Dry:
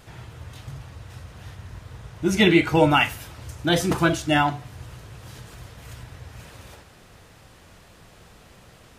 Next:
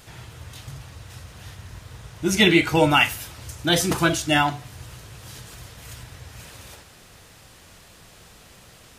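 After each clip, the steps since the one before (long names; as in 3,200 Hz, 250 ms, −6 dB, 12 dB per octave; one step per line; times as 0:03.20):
high-shelf EQ 2,700 Hz +8.5 dB
level −1 dB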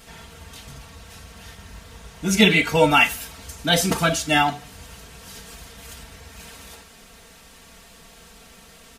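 comb filter 4.4 ms, depth 90%
level −1 dB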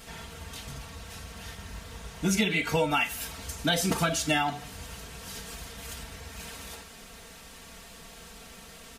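downward compressor 16 to 1, threshold −22 dBFS, peak gain reduction 14 dB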